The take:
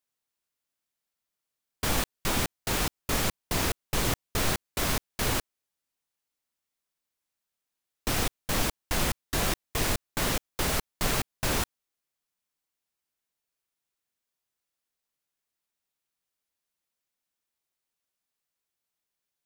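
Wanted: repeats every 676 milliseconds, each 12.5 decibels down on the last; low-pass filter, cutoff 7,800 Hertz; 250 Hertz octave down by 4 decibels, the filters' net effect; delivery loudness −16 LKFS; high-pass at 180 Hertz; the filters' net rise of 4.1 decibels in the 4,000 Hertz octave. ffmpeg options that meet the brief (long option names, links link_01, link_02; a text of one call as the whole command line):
ffmpeg -i in.wav -af "highpass=180,lowpass=7800,equalizer=frequency=250:width_type=o:gain=-3.5,equalizer=frequency=4000:width_type=o:gain=5.5,aecho=1:1:676|1352|2028:0.237|0.0569|0.0137,volume=13.5dB" out.wav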